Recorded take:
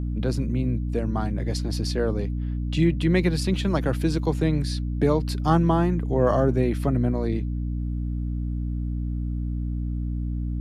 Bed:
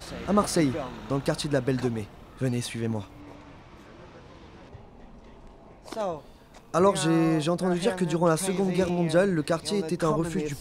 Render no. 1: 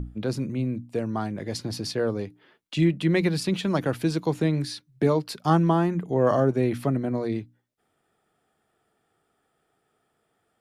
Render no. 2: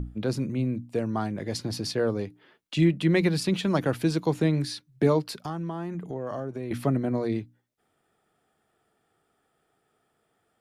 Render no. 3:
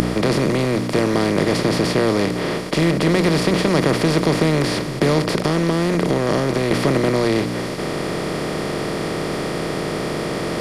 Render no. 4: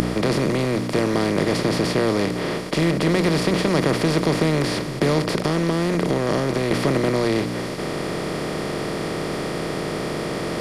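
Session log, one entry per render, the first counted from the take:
notches 60/120/180/240/300 Hz
5.21–6.71 compressor 4:1, threshold -31 dBFS
per-bin compression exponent 0.2; reverse; upward compressor, threshold -19 dBFS; reverse
gain -2.5 dB

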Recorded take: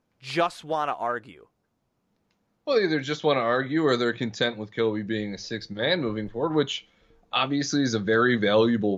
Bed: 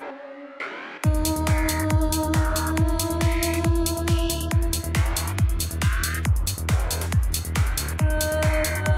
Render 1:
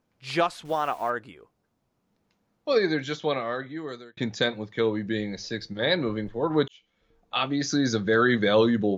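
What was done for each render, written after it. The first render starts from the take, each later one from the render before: 0.65–1.1 level-crossing sampler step -45.5 dBFS; 2.76–4.17 fade out; 6.68–7.95 fade in equal-power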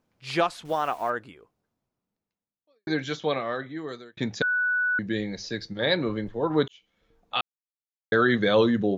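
1.23–2.87 fade out quadratic; 4.42–4.99 bleep 1480 Hz -21.5 dBFS; 7.41–8.12 mute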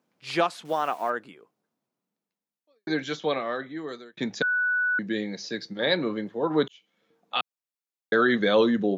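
HPF 160 Hz 24 dB/oct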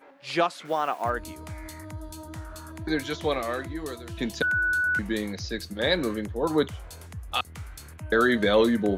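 add bed -17.5 dB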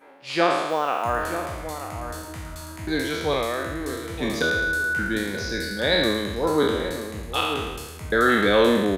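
spectral trails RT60 1.29 s; outdoor echo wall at 160 m, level -9 dB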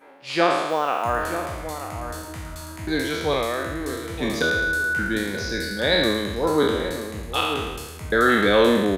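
gain +1 dB

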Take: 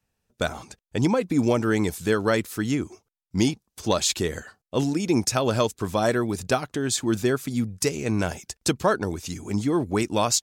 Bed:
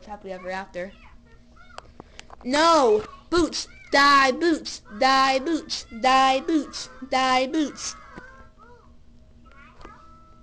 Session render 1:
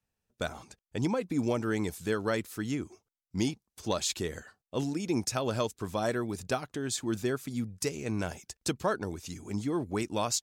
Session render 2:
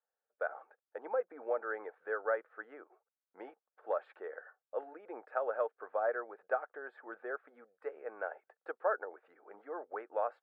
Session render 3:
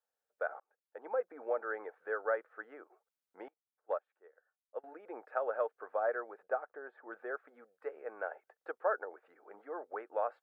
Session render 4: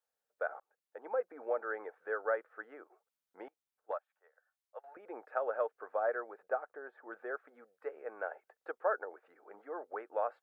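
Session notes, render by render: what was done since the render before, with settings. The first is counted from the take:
gain -8 dB
elliptic band-pass 490–1600 Hz, stop band 60 dB; notch 1000 Hz, Q 5.5
0.6–1.2 fade in; 3.48–4.84 upward expander 2.5:1, over -47 dBFS; 6.43–7.11 high shelf 2300 Hz -11.5 dB
3.91–4.97 HPF 610 Hz 24 dB/oct

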